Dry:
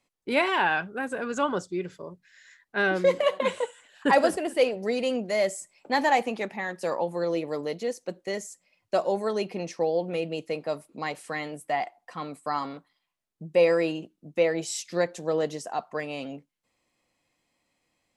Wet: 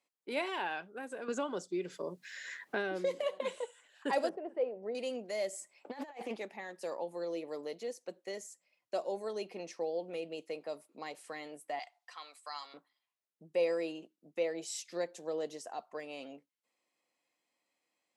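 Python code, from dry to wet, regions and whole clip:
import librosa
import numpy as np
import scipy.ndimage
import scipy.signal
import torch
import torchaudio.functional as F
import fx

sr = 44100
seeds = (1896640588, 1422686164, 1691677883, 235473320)

y = fx.chain(x, sr, fx.low_shelf(hz=160.0, db=7.0),
    fx.band_squash(depth_pct=100), at=(1.28, 3.41))
y = fx.chain(y, sr, fx.lowpass(hz=1100.0, slope=12),
    fx.peak_eq(hz=280.0, db=-6.0, octaves=0.32), at=(4.29, 4.95))
y = fx.chain(y, sr, fx.bass_treble(bass_db=-1, treble_db=-5),
    fx.over_compress(threshold_db=-30.0, ratio=-0.5),
    fx.doppler_dist(depth_ms=0.17), at=(5.53, 6.36))
y = fx.chain(y, sr, fx.highpass(hz=970.0, slope=12),
    fx.peak_eq(hz=4400.0, db=8.0, octaves=1.7), at=(11.79, 12.74))
y = scipy.signal.sosfilt(scipy.signal.butter(2, 310.0, 'highpass', fs=sr, output='sos'), y)
y = fx.dynamic_eq(y, sr, hz=1400.0, q=0.75, threshold_db=-39.0, ratio=4.0, max_db=-7)
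y = y * 10.0 ** (-8.0 / 20.0)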